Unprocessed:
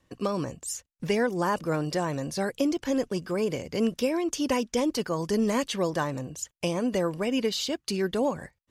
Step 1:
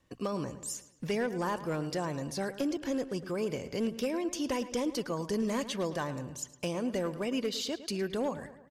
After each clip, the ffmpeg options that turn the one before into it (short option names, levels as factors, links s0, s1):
-filter_complex "[0:a]asplit=2[s0][s1];[s1]acompressor=threshold=0.0178:ratio=5,volume=0.75[s2];[s0][s2]amix=inputs=2:normalize=0,asoftclip=type=hard:threshold=0.133,asplit=2[s3][s4];[s4]adelay=109,lowpass=f=4300:p=1,volume=0.211,asplit=2[s5][s6];[s6]adelay=109,lowpass=f=4300:p=1,volume=0.51,asplit=2[s7][s8];[s8]adelay=109,lowpass=f=4300:p=1,volume=0.51,asplit=2[s9][s10];[s10]adelay=109,lowpass=f=4300:p=1,volume=0.51,asplit=2[s11][s12];[s12]adelay=109,lowpass=f=4300:p=1,volume=0.51[s13];[s3][s5][s7][s9][s11][s13]amix=inputs=6:normalize=0,volume=0.422"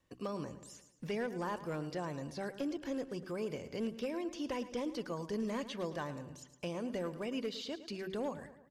-filter_complex "[0:a]acrossover=split=4800[s0][s1];[s1]acompressor=threshold=0.002:ratio=4:attack=1:release=60[s2];[s0][s2]amix=inputs=2:normalize=0,bandreject=f=63.79:t=h:w=4,bandreject=f=127.58:t=h:w=4,bandreject=f=191.37:t=h:w=4,bandreject=f=255.16:t=h:w=4,bandreject=f=318.95:t=h:w=4,bandreject=f=382.74:t=h:w=4,volume=0.531"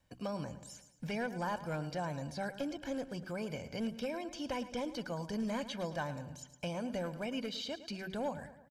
-af "aecho=1:1:1.3:0.59,volume=1.12"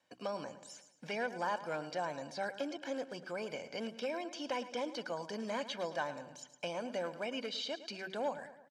-af "highpass=350,lowpass=7200,volume=1.26"